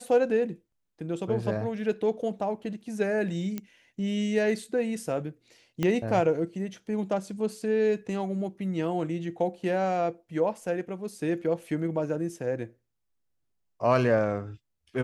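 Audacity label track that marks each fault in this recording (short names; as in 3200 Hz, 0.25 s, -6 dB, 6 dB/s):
3.580000	3.580000	pop -19 dBFS
5.830000	5.830000	pop -14 dBFS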